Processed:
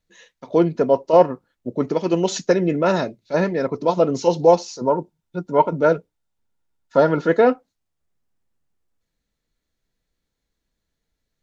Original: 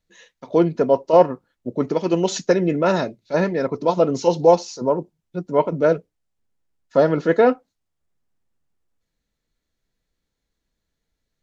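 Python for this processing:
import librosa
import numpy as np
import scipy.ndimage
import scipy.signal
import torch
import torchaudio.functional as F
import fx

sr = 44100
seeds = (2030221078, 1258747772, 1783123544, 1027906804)

y = fx.small_body(x, sr, hz=(910.0, 1400.0, 3600.0), ring_ms=45, db=9, at=(4.87, 7.29))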